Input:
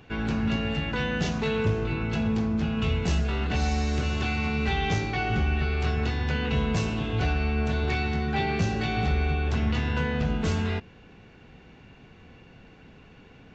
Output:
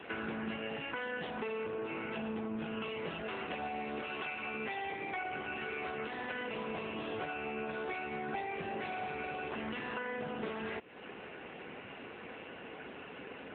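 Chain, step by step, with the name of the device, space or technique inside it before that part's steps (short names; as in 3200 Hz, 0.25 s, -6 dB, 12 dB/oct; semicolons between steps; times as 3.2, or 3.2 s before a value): 4.01–4.54 HPF 270 Hz 6 dB/oct; voicemail (BPF 370–3200 Hz; compressor 8:1, threshold -46 dBFS, peak gain reduction 20 dB; gain +10.5 dB; AMR-NB 7.95 kbps 8000 Hz)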